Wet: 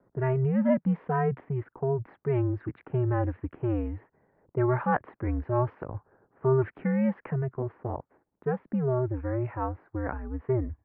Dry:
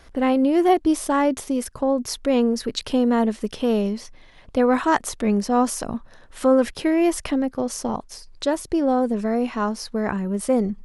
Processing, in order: low-pass opened by the level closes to 660 Hz, open at -14.5 dBFS; mistuned SSB -130 Hz 210–2200 Hz; gain -6.5 dB

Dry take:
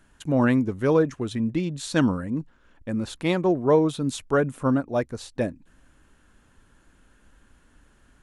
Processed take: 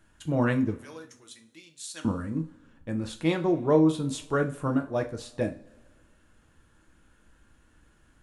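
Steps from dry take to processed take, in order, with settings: 0.76–2.05 differentiator; on a send: reverb, pre-delay 3 ms, DRR 4 dB; on the sum: gain -4.5 dB

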